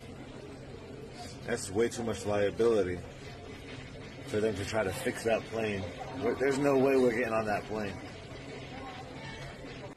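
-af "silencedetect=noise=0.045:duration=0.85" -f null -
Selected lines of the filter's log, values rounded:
silence_start: 0.00
silence_end: 1.49 | silence_duration: 1.49
silence_start: 2.94
silence_end: 4.34 | silence_duration: 1.40
silence_start: 7.89
silence_end: 9.96 | silence_duration: 2.08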